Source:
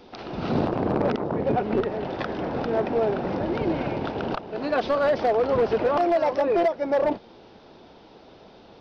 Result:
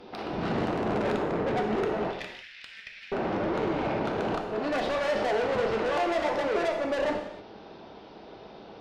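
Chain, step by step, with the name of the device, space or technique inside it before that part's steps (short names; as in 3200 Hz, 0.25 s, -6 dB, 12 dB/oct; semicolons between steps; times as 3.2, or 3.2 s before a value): 2.11–3.12 steep high-pass 1900 Hz 48 dB/oct; high shelf 4600 Hz -3.5 dB; tube preamp driven hard (tube stage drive 30 dB, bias 0.5; low shelf 120 Hz -5.5 dB; high shelf 5300 Hz -5 dB); non-linear reverb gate 0.33 s falling, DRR 2 dB; gain +3.5 dB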